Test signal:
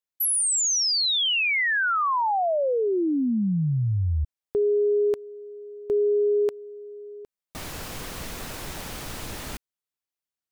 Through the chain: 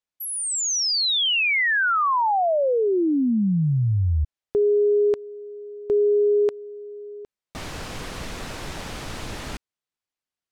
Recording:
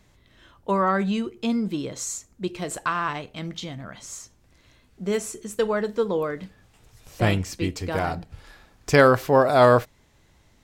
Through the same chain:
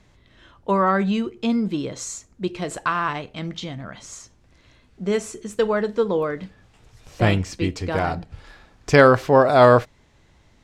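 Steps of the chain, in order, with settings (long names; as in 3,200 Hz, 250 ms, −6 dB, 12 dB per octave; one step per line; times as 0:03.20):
high-frequency loss of the air 52 metres
level +3 dB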